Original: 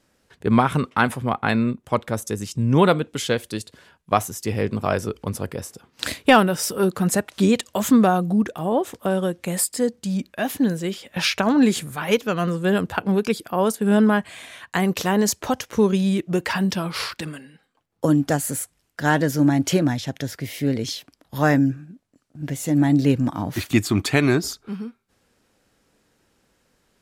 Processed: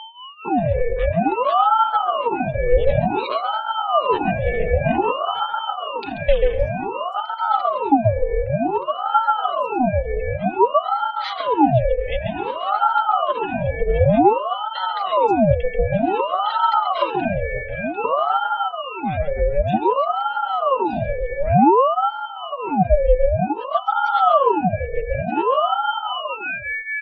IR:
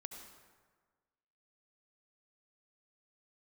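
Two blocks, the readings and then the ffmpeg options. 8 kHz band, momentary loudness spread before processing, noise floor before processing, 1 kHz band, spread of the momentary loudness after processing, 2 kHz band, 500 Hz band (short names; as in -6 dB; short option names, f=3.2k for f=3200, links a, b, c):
under -35 dB, 12 LU, -67 dBFS, +9.0 dB, 9 LU, -2.0 dB, +4.5 dB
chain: -filter_complex "[0:a]asplit=3[a][b][c];[a]bandpass=f=270:t=q:w=8,volume=0dB[d];[b]bandpass=f=2.29k:t=q:w=8,volume=-6dB[e];[c]bandpass=f=3.01k:t=q:w=8,volume=-9dB[f];[d][e][f]amix=inputs=3:normalize=0,lowshelf=f=330:g=11.5,asplit=2[g][h];[1:a]atrim=start_sample=2205,highshelf=f=3.3k:g=-8,adelay=135[i];[h][i]afir=irnorm=-1:irlink=0,volume=3dB[j];[g][j]amix=inputs=2:normalize=0,afftdn=nr=25:nf=-40,asplit=2[k][l];[l]adelay=1224,volume=-7dB,highshelf=f=4k:g=-27.6[m];[k][m]amix=inputs=2:normalize=0,aeval=exprs='val(0)+0.0141*sin(2*PI*2000*n/s)':c=same,highpass=f=48:w=0.5412,highpass=f=48:w=1.3066,equalizer=f=2.9k:w=3.8:g=7,dynaudnorm=f=210:g=9:m=15dB,flanger=delay=3.4:depth=1.5:regen=1:speed=0.74:shape=triangular,acrossover=split=120[n][o];[o]acompressor=threshold=-30dB:ratio=1.5[p];[n][p]amix=inputs=2:normalize=0,aeval=exprs='val(0)*sin(2*PI*680*n/s+680*0.65/0.54*sin(2*PI*0.54*n/s))':c=same,volume=6dB"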